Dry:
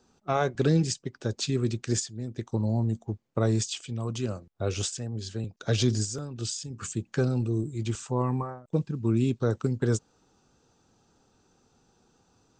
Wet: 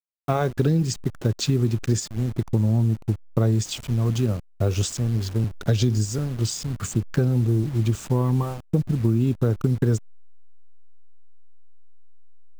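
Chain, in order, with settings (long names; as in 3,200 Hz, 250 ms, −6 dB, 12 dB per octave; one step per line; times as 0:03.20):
hold until the input has moved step −40 dBFS
low-shelf EQ 290 Hz +9.5 dB
downward compressor 5 to 1, threshold −21 dBFS, peak gain reduction 9 dB
level +4 dB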